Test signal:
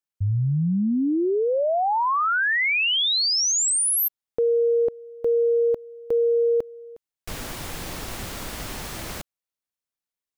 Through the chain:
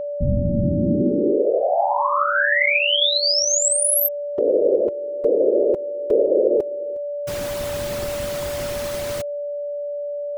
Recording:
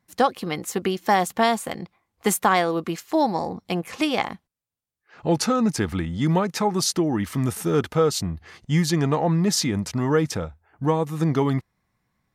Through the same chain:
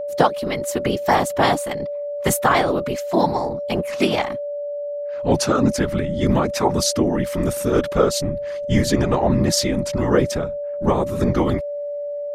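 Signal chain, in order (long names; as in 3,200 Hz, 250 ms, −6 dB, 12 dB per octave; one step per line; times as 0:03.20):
random phases in short frames
steady tone 580 Hz −27 dBFS
level +2.5 dB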